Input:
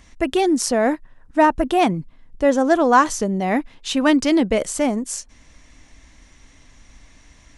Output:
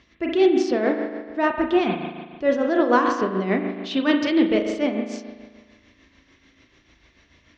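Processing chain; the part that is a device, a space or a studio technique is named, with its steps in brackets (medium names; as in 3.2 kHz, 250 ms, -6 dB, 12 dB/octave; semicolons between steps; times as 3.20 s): combo amplifier with spring reverb and tremolo (spring tank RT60 1.5 s, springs 37 ms, chirp 60 ms, DRR 2 dB; tremolo 6.8 Hz, depth 51%; cabinet simulation 83–3800 Hz, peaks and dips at 160 Hz -6 dB, 370 Hz +7 dB, 810 Hz -7 dB); peaking EQ 6 kHz +9.5 dB 1.4 oct; trim -3.5 dB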